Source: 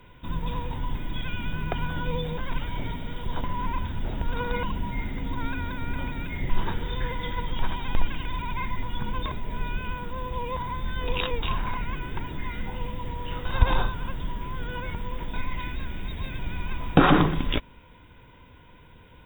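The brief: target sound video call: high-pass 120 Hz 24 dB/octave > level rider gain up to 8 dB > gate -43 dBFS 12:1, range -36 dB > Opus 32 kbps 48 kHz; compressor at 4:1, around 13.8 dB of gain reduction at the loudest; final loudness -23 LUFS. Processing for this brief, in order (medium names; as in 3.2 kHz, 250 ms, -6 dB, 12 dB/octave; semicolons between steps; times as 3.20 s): compression 4:1, threshold -30 dBFS; high-pass 120 Hz 24 dB/octave; level rider gain up to 8 dB; gate -43 dBFS 12:1, range -36 dB; trim +13 dB; Opus 32 kbps 48 kHz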